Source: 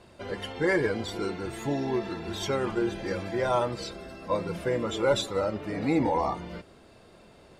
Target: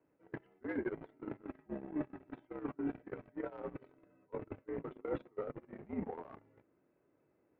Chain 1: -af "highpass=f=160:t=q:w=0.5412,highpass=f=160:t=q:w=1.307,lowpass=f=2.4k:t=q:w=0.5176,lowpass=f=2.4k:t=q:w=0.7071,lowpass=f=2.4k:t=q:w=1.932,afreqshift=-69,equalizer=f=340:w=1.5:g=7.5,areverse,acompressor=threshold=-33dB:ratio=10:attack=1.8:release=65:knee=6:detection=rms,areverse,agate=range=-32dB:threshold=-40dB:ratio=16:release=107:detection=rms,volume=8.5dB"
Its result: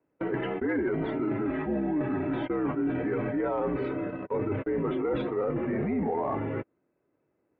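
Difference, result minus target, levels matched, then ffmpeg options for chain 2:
compressor: peak gain reduction -6 dB
-af "highpass=f=160:t=q:w=0.5412,highpass=f=160:t=q:w=1.307,lowpass=f=2.4k:t=q:w=0.5176,lowpass=f=2.4k:t=q:w=0.7071,lowpass=f=2.4k:t=q:w=1.932,afreqshift=-69,equalizer=f=340:w=1.5:g=7.5,areverse,acompressor=threshold=-39.5dB:ratio=10:attack=1.8:release=65:knee=6:detection=rms,areverse,agate=range=-32dB:threshold=-40dB:ratio=16:release=107:detection=rms,volume=8.5dB"

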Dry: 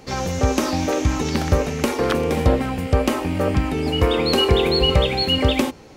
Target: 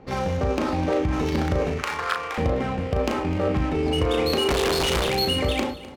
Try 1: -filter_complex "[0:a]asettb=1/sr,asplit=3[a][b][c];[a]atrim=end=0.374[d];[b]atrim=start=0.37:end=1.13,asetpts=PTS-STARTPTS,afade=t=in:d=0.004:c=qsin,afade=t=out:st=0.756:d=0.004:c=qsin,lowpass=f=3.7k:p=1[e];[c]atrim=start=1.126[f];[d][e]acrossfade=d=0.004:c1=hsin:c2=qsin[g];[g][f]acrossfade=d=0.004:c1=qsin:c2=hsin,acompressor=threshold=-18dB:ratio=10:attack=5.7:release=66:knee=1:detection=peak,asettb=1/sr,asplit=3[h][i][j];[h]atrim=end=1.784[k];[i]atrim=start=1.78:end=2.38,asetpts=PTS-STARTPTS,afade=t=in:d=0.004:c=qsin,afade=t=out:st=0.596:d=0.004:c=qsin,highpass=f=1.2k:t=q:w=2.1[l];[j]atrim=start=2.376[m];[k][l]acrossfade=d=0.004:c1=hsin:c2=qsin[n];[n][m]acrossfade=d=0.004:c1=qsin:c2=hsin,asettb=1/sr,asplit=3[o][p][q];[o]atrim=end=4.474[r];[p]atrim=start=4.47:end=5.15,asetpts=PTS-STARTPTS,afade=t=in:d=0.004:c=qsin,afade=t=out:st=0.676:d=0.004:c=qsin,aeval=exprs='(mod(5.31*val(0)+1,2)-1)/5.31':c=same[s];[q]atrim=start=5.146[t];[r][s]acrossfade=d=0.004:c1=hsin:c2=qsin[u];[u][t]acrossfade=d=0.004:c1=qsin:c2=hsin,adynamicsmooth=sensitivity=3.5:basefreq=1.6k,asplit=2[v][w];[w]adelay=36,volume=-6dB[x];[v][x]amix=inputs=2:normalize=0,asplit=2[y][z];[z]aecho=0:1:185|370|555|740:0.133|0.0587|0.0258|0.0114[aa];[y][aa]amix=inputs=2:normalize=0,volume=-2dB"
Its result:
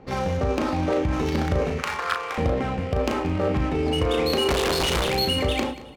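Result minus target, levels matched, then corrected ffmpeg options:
echo 70 ms early
-filter_complex "[0:a]asettb=1/sr,asplit=3[a][b][c];[a]atrim=end=0.374[d];[b]atrim=start=0.37:end=1.13,asetpts=PTS-STARTPTS,afade=t=in:d=0.004:c=qsin,afade=t=out:st=0.756:d=0.004:c=qsin,lowpass=f=3.7k:p=1[e];[c]atrim=start=1.126[f];[d][e]acrossfade=d=0.004:c1=hsin:c2=qsin[g];[g][f]acrossfade=d=0.004:c1=qsin:c2=hsin,acompressor=threshold=-18dB:ratio=10:attack=5.7:release=66:knee=1:detection=peak,asettb=1/sr,asplit=3[h][i][j];[h]atrim=end=1.784[k];[i]atrim=start=1.78:end=2.38,asetpts=PTS-STARTPTS,afade=t=in:d=0.004:c=qsin,afade=t=out:st=0.596:d=0.004:c=qsin,highpass=f=1.2k:t=q:w=2.1[l];[j]atrim=start=2.376[m];[k][l]acrossfade=d=0.004:c1=hsin:c2=qsin[n];[n][m]acrossfade=d=0.004:c1=qsin:c2=hsin,asettb=1/sr,asplit=3[o][p][q];[o]atrim=end=4.474[r];[p]atrim=start=4.47:end=5.15,asetpts=PTS-STARTPTS,afade=t=in:d=0.004:c=qsin,afade=t=out:st=0.676:d=0.004:c=qsin,aeval=exprs='(mod(5.31*val(0)+1,2)-1)/5.31':c=same[s];[q]atrim=start=5.146[t];[r][s]acrossfade=d=0.004:c1=hsin:c2=qsin[u];[u][t]acrossfade=d=0.004:c1=qsin:c2=hsin,adynamicsmooth=sensitivity=3.5:basefreq=1.6k,asplit=2[v][w];[w]adelay=36,volume=-6dB[x];[v][x]amix=inputs=2:normalize=0,asplit=2[y][z];[z]aecho=0:1:255|510|765|1020:0.133|0.0587|0.0258|0.0114[aa];[y][aa]amix=inputs=2:normalize=0,volume=-2dB"

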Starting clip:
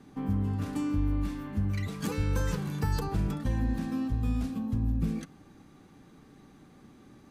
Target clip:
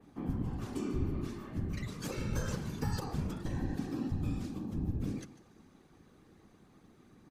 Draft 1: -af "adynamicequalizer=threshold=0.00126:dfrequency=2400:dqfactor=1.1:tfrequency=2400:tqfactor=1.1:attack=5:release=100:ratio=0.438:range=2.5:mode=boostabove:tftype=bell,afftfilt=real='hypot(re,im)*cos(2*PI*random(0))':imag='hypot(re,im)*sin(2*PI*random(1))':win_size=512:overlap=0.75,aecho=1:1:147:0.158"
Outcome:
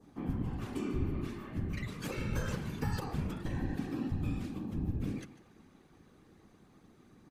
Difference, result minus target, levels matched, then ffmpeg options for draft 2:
8000 Hz band -3.5 dB
-af "adynamicequalizer=threshold=0.00126:dfrequency=5800:dqfactor=1.1:tfrequency=5800:tqfactor=1.1:attack=5:release=100:ratio=0.438:range=2.5:mode=boostabove:tftype=bell,afftfilt=real='hypot(re,im)*cos(2*PI*random(0))':imag='hypot(re,im)*sin(2*PI*random(1))':win_size=512:overlap=0.75,aecho=1:1:147:0.158"

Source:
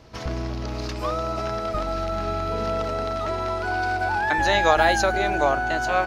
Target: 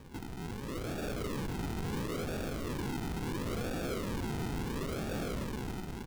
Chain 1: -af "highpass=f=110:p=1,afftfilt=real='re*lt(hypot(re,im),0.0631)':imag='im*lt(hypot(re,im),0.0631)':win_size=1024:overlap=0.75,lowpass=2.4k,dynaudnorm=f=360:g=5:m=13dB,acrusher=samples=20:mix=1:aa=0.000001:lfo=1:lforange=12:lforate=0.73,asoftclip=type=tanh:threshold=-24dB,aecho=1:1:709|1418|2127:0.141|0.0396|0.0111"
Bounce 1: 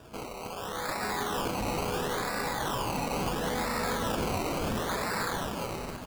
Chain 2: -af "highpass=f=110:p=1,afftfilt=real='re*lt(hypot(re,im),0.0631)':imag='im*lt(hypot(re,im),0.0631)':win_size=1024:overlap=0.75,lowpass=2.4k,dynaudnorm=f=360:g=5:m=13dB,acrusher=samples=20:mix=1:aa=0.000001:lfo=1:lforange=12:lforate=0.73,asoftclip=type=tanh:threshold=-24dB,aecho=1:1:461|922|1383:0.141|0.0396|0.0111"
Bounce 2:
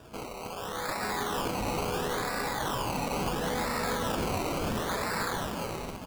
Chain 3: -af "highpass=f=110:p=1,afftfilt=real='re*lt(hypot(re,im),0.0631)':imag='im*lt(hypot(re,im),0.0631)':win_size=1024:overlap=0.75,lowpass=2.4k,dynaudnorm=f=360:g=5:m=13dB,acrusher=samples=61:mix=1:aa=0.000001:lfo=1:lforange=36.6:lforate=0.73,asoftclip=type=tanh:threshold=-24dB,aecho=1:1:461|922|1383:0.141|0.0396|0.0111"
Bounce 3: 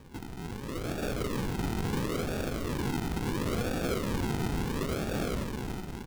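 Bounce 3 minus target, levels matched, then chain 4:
soft clip: distortion -7 dB
-af "highpass=f=110:p=1,afftfilt=real='re*lt(hypot(re,im),0.0631)':imag='im*lt(hypot(re,im),0.0631)':win_size=1024:overlap=0.75,lowpass=2.4k,dynaudnorm=f=360:g=5:m=13dB,acrusher=samples=61:mix=1:aa=0.000001:lfo=1:lforange=36.6:lforate=0.73,asoftclip=type=tanh:threshold=-33dB,aecho=1:1:461|922|1383:0.141|0.0396|0.0111"

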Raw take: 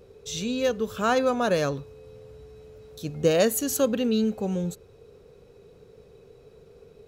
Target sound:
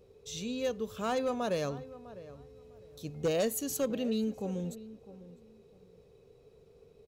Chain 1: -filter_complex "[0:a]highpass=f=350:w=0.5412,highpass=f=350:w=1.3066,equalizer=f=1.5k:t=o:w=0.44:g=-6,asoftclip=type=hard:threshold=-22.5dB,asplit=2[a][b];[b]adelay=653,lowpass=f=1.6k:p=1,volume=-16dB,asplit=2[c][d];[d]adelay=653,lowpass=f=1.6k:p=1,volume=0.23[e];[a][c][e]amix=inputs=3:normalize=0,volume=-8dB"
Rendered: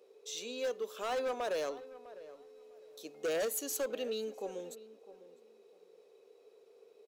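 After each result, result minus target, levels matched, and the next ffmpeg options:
250 Hz band -9.5 dB; hard clip: distortion +11 dB
-filter_complex "[0:a]equalizer=f=1.5k:t=o:w=0.44:g=-6,asoftclip=type=hard:threshold=-22.5dB,asplit=2[a][b];[b]adelay=653,lowpass=f=1.6k:p=1,volume=-16dB,asplit=2[c][d];[d]adelay=653,lowpass=f=1.6k:p=1,volume=0.23[e];[a][c][e]amix=inputs=3:normalize=0,volume=-8dB"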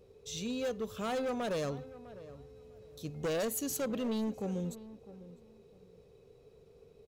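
hard clip: distortion +11 dB
-filter_complex "[0:a]equalizer=f=1.5k:t=o:w=0.44:g=-6,asoftclip=type=hard:threshold=-16dB,asplit=2[a][b];[b]adelay=653,lowpass=f=1.6k:p=1,volume=-16dB,asplit=2[c][d];[d]adelay=653,lowpass=f=1.6k:p=1,volume=0.23[e];[a][c][e]amix=inputs=3:normalize=0,volume=-8dB"

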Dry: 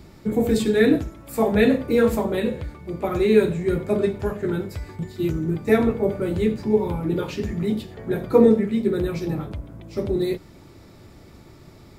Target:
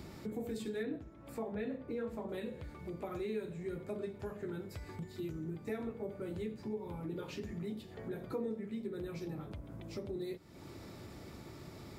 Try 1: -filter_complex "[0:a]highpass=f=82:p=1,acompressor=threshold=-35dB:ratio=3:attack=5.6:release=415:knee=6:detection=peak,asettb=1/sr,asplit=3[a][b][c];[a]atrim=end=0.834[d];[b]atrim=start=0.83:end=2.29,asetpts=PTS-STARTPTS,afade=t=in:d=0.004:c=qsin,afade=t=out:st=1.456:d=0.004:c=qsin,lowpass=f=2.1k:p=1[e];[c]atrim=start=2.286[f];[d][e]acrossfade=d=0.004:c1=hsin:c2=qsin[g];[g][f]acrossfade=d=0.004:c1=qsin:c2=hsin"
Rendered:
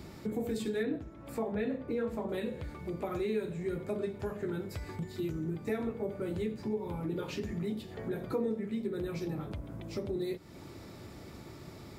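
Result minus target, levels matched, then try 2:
compressor: peak gain reduction -5.5 dB
-filter_complex "[0:a]highpass=f=82:p=1,acompressor=threshold=-43.5dB:ratio=3:attack=5.6:release=415:knee=6:detection=peak,asettb=1/sr,asplit=3[a][b][c];[a]atrim=end=0.834[d];[b]atrim=start=0.83:end=2.29,asetpts=PTS-STARTPTS,afade=t=in:d=0.004:c=qsin,afade=t=out:st=1.456:d=0.004:c=qsin,lowpass=f=2.1k:p=1[e];[c]atrim=start=2.286[f];[d][e]acrossfade=d=0.004:c1=hsin:c2=qsin[g];[g][f]acrossfade=d=0.004:c1=qsin:c2=hsin"

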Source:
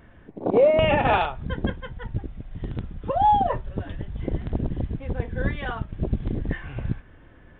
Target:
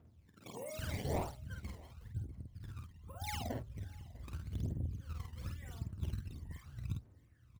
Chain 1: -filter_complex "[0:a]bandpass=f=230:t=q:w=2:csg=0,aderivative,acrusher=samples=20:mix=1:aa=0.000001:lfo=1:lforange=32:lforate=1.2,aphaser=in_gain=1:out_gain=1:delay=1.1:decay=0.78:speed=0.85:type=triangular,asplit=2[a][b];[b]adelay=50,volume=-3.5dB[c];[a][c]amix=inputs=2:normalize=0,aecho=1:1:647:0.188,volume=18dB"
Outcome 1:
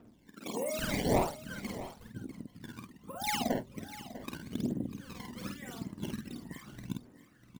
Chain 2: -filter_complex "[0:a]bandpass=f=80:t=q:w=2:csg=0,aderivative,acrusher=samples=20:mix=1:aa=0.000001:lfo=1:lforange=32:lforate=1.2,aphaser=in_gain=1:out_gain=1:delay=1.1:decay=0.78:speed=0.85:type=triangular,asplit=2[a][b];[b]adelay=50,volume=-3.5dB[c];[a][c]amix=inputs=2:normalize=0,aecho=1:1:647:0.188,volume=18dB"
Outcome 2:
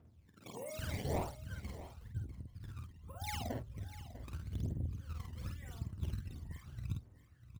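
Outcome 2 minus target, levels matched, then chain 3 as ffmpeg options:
echo-to-direct +8 dB
-filter_complex "[0:a]bandpass=f=80:t=q:w=2:csg=0,aderivative,acrusher=samples=20:mix=1:aa=0.000001:lfo=1:lforange=32:lforate=1.2,aphaser=in_gain=1:out_gain=1:delay=1.1:decay=0.78:speed=0.85:type=triangular,asplit=2[a][b];[b]adelay=50,volume=-3.5dB[c];[a][c]amix=inputs=2:normalize=0,aecho=1:1:647:0.075,volume=18dB"

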